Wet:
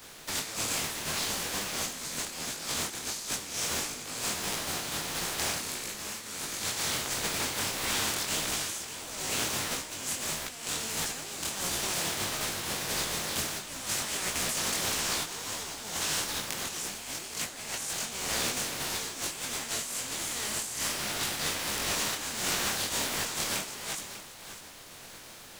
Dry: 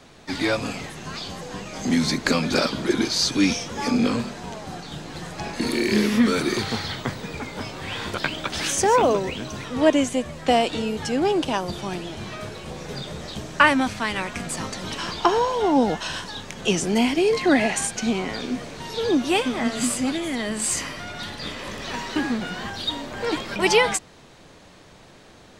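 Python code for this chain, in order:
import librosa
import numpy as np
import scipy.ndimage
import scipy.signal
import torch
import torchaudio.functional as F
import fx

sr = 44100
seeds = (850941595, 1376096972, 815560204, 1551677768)

y = fx.spec_flatten(x, sr, power=0.28)
y = fx.dynamic_eq(y, sr, hz=7200.0, q=1.5, threshold_db=-37.0, ratio=4.0, max_db=6)
y = fx.over_compress(y, sr, threshold_db=-30.0, ratio=-1.0)
y = y + 10.0 ** (-12.0 / 20.0) * np.pad(y, (int(596 * sr / 1000.0), 0))[:len(y)]
y = fx.detune_double(y, sr, cents=53)
y = y * 10.0 ** (-1.5 / 20.0)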